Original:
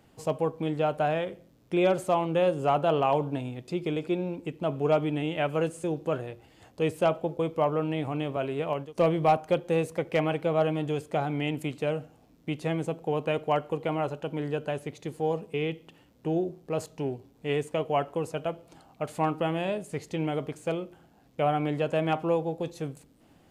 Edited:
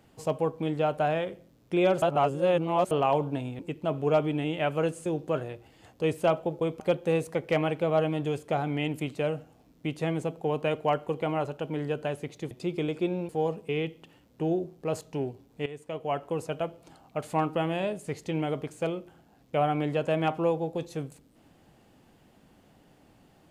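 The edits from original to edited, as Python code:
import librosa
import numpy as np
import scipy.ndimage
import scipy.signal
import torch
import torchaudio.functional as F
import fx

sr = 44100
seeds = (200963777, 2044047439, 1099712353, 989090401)

y = fx.edit(x, sr, fx.reverse_span(start_s=2.02, length_s=0.89),
    fx.move(start_s=3.59, length_s=0.78, to_s=15.14),
    fx.cut(start_s=7.58, length_s=1.85),
    fx.fade_in_from(start_s=17.51, length_s=0.75, floor_db=-16.5), tone=tone)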